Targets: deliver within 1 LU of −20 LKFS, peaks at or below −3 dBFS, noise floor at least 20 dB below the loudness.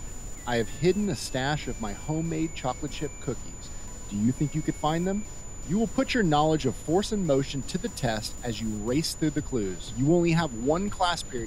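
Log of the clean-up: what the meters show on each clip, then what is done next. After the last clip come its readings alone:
interfering tone 7,000 Hz; level of the tone −44 dBFS; background noise floor −40 dBFS; target noise floor −48 dBFS; integrated loudness −28.0 LKFS; sample peak −11.0 dBFS; target loudness −20.0 LKFS
→ notch filter 7,000 Hz, Q 30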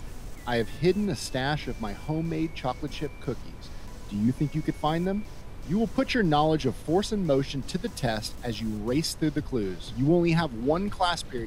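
interfering tone none found; background noise floor −41 dBFS; target noise floor −48 dBFS
→ noise reduction from a noise print 7 dB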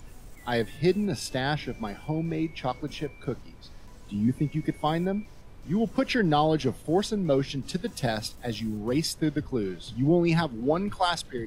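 background noise floor −47 dBFS; target noise floor −48 dBFS
→ noise reduction from a noise print 6 dB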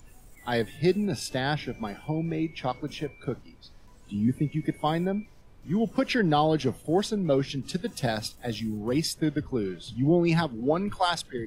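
background noise floor −52 dBFS; integrated loudness −28.0 LKFS; sample peak −12.0 dBFS; target loudness −20.0 LKFS
→ level +8 dB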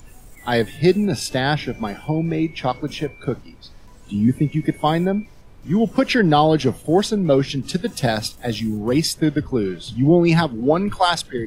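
integrated loudness −20.0 LKFS; sample peak −4.0 dBFS; background noise floor −44 dBFS

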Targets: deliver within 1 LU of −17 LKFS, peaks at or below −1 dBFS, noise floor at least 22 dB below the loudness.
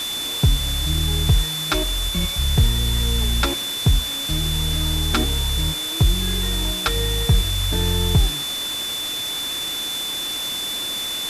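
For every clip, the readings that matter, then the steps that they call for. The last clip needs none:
interfering tone 3,500 Hz; level of the tone −25 dBFS; background noise floor −27 dBFS; target noise floor −43 dBFS; integrated loudness −21.0 LKFS; sample peak −6.5 dBFS; target loudness −17.0 LKFS
→ notch filter 3,500 Hz, Q 30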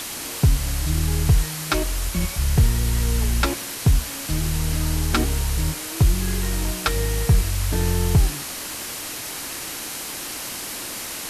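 interfering tone none found; background noise floor −32 dBFS; target noise floor −46 dBFS
→ broadband denoise 14 dB, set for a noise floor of −32 dBFS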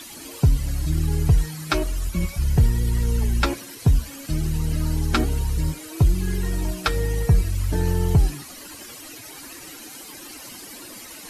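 background noise floor −40 dBFS; target noise floor −46 dBFS
→ broadband denoise 6 dB, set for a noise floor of −40 dBFS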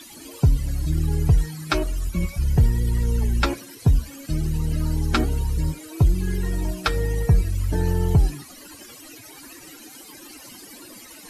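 background noise floor −44 dBFS; target noise floor −46 dBFS
→ broadband denoise 6 dB, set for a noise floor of −44 dBFS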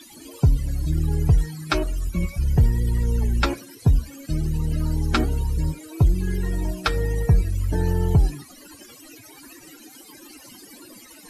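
background noise floor −47 dBFS; integrated loudness −23.5 LKFS; sample peak −8.0 dBFS; target loudness −17.0 LKFS
→ level +6.5 dB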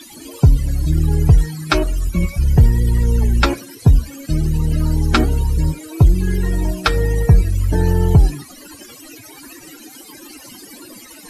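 integrated loudness −17.0 LKFS; sample peak −1.5 dBFS; background noise floor −40 dBFS

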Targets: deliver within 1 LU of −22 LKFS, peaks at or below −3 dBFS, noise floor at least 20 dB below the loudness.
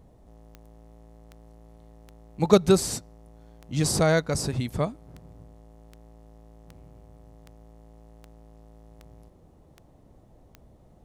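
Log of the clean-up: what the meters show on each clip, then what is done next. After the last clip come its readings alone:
number of clicks 14; integrated loudness −24.5 LKFS; sample peak −2.5 dBFS; target loudness −22.0 LKFS
→ click removal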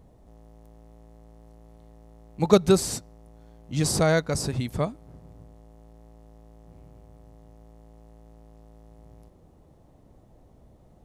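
number of clicks 0; integrated loudness −24.5 LKFS; sample peak −2.5 dBFS; target loudness −22.0 LKFS
→ level +2.5 dB
brickwall limiter −3 dBFS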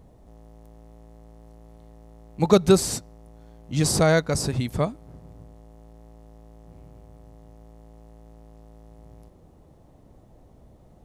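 integrated loudness −22.0 LKFS; sample peak −3.0 dBFS; background noise floor −54 dBFS

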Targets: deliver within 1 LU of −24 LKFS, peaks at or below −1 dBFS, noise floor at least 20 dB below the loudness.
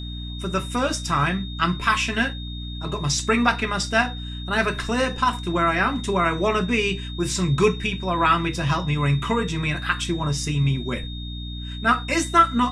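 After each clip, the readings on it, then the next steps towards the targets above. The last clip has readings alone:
mains hum 60 Hz; hum harmonics up to 300 Hz; level of the hum −30 dBFS; interfering tone 3,700 Hz; level of the tone −37 dBFS; integrated loudness −22.5 LKFS; sample peak −4.5 dBFS; target loudness −24.0 LKFS
→ mains-hum notches 60/120/180/240/300 Hz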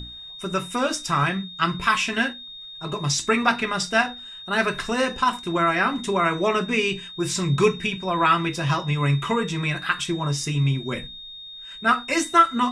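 mains hum none found; interfering tone 3,700 Hz; level of the tone −37 dBFS
→ notch filter 3,700 Hz, Q 30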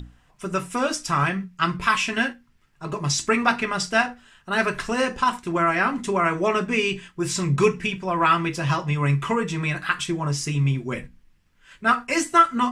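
interfering tone none found; integrated loudness −23.0 LKFS; sample peak −4.5 dBFS; target loudness −24.0 LKFS
→ level −1 dB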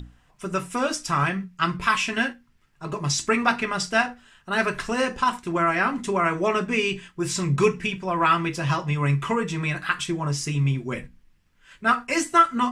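integrated loudness −24.0 LKFS; sample peak −5.5 dBFS; background noise floor −61 dBFS

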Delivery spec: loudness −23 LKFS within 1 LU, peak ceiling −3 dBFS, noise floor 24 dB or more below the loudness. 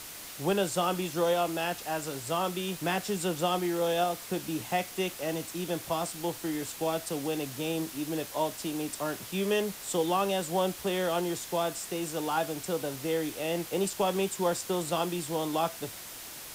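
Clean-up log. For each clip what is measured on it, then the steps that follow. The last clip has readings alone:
background noise floor −44 dBFS; target noise floor −55 dBFS; integrated loudness −31.0 LKFS; sample peak −16.0 dBFS; target loudness −23.0 LKFS
→ broadband denoise 11 dB, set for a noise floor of −44 dBFS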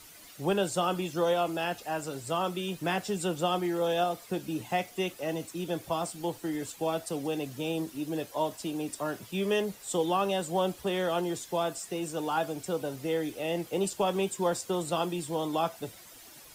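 background noise floor −51 dBFS; target noise floor −56 dBFS
→ broadband denoise 6 dB, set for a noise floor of −51 dBFS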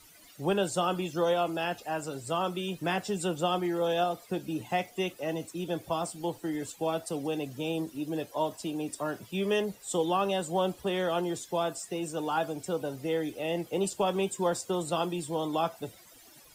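background noise floor −55 dBFS; target noise floor −56 dBFS
→ broadband denoise 6 dB, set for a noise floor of −55 dBFS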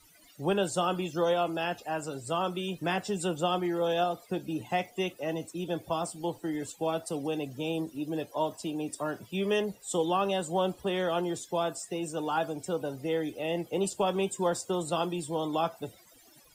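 background noise floor −58 dBFS; integrated loudness −31.5 LKFS; sample peak −16.5 dBFS; target loudness −23.0 LKFS
→ level +8.5 dB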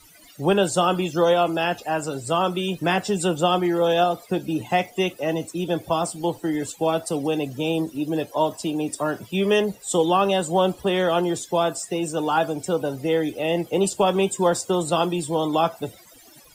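integrated loudness −23.0 LKFS; sample peak −8.0 dBFS; background noise floor −50 dBFS

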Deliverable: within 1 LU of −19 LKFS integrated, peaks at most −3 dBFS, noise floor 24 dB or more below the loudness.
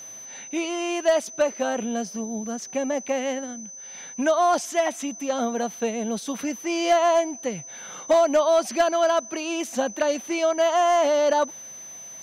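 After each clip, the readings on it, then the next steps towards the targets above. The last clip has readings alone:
share of clipped samples 0.3%; peaks flattened at −12.5 dBFS; interfering tone 6,100 Hz; level of the tone −38 dBFS; integrated loudness −24.0 LKFS; sample peak −12.5 dBFS; target loudness −19.0 LKFS
→ clipped peaks rebuilt −12.5 dBFS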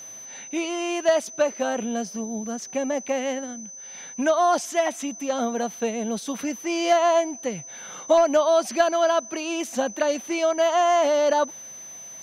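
share of clipped samples 0.0%; interfering tone 6,100 Hz; level of the tone −38 dBFS
→ notch filter 6,100 Hz, Q 30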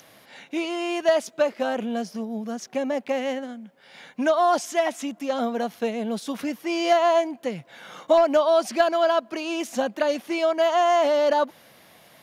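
interfering tone none found; integrated loudness −24.0 LKFS; sample peak −7.0 dBFS; target loudness −19.0 LKFS
→ level +5 dB
brickwall limiter −3 dBFS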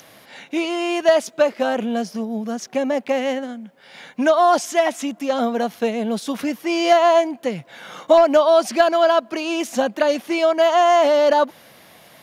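integrated loudness −19.0 LKFS; sample peak −3.0 dBFS; background noise floor −49 dBFS

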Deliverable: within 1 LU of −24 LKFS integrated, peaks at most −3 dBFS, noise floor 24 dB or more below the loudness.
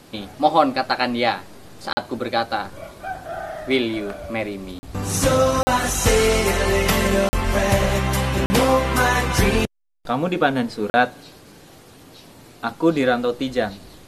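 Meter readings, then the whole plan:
number of dropouts 6; longest dropout 40 ms; integrated loudness −20.5 LKFS; sample peak −1.0 dBFS; target loudness −24.0 LKFS
→ repair the gap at 0:01.93/0:04.79/0:05.63/0:07.29/0:08.46/0:10.90, 40 ms
level −3.5 dB

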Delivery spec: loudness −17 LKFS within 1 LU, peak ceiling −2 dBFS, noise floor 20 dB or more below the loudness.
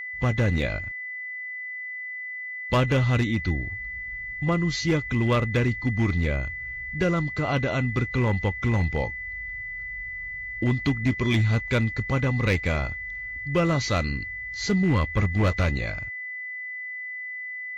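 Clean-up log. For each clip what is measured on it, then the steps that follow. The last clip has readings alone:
share of clipped samples 1.0%; peaks flattened at −15.5 dBFS; interfering tone 2,000 Hz; level of the tone −32 dBFS; integrated loudness −26.0 LKFS; sample peak −15.5 dBFS; target loudness −17.0 LKFS
→ clipped peaks rebuilt −15.5 dBFS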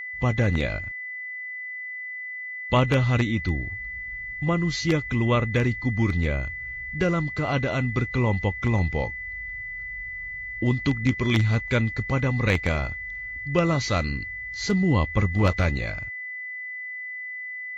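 share of clipped samples 0.0%; interfering tone 2,000 Hz; level of the tone −32 dBFS
→ notch filter 2,000 Hz, Q 30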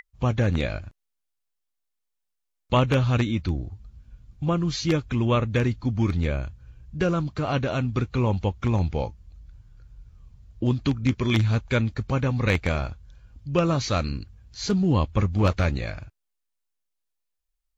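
interfering tone none found; integrated loudness −25.0 LKFS; sample peak −6.5 dBFS; target loudness −17.0 LKFS
→ level +8 dB
brickwall limiter −2 dBFS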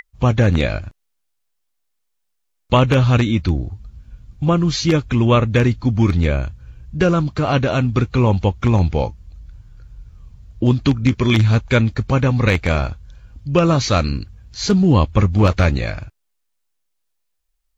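integrated loudness −17.5 LKFS; sample peak −2.0 dBFS; background noise floor −71 dBFS

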